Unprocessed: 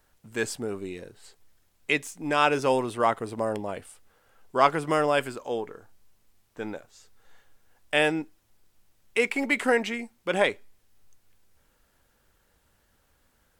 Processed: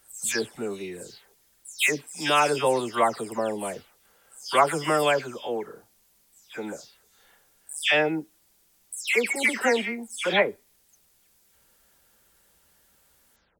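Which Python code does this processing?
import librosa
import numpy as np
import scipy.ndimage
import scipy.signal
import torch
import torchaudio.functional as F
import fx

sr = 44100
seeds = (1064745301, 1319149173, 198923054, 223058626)

y = fx.spec_delay(x, sr, highs='early', ms=236)
y = fx.highpass(y, sr, hz=75.0, slope=6)
y = fx.high_shelf(y, sr, hz=3700.0, db=10.0)
y = y * 10.0 ** (1.0 / 20.0)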